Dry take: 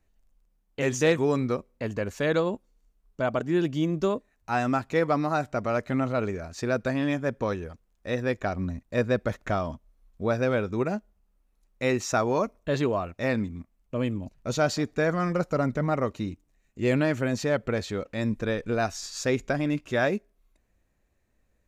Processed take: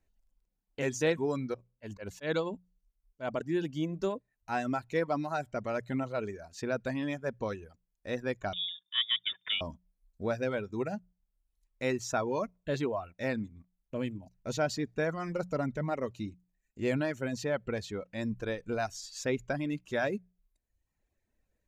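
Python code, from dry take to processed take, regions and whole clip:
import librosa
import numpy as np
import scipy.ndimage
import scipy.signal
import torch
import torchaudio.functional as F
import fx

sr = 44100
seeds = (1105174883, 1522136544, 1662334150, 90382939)

y = fx.chain(x, sr, fx.dynamic_eq(hz=3400.0, q=0.93, threshold_db=-44.0, ratio=4.0, max_db=4),
    fx.auto_swell(attack_ms=110.0), at=(1.54, 3.28))
y = fx.chain(y, sr, fx.freq_invert(carrier_hz=3600),
    fx.highpass(hz=180.0, slope=6), at=(8.53, 9.61))
y = fx.notch(y, sr, hz=1200.0, q=8.6)
y = fx.dereverb_blind(y, sr, rt60_s=0.86)
y = fx.hum_notches(y, sr, base_hz=60, count=3)
y = y * 10.0 ** (-5.5 / 20.0)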